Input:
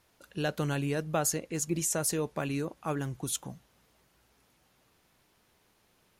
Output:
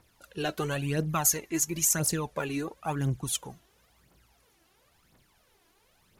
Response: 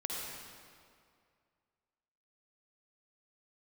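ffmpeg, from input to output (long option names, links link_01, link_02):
-filter_complex "[0:a]aphaser=in_gain=1:out_gain=1:delay=3.1:decay=0.65:speed=0.97:type=triangular,asettb=1/sr,asplit=3[link_01][link_02][link_03];[link_01]atrim=end=1.094[link_04];[link_02]atrim=start=1.09:end=2,asetpts=PTS-STARTPTS,afade=type=in:duration=0.004:curve=qsin,afade=type=out:start_time=0.906:duration=0.004:curve=qsin,equalizer=frequency=500:width_type=o:width=0.33:gain=-11,equalizer=frequency=1000:width_type=o:width=0.33:gain=5,equalizer=frequency=2000:width_type=o:width=0.33:gain=4,equalizer=frequency=6300:width_type=o:width=0.33:gain=6,equalizer=frequency=12500:width_type=o:width=0.33:gain=10[link_05];[link_03]atrim=start=1.996[link_06];[link_04][link_05]acrossfade=duration=0.004:curve1=hsin:curve2=qsin[link_07];[link_07][link_06]acrossfade=duration=0.004:curve1=qsin:curve2=hsin"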